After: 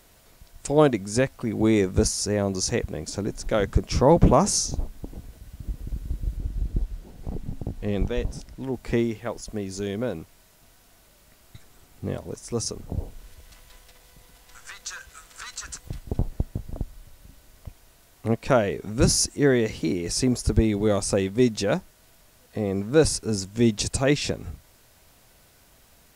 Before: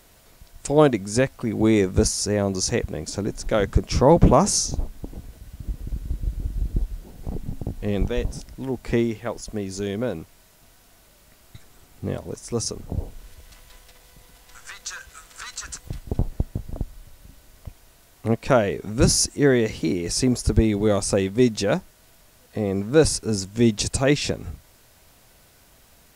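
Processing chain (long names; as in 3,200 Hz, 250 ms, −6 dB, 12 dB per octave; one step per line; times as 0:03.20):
0:06.37–0:08.74: high-shelf EQ 9,000 Hz −5.5 dB
level −2 dB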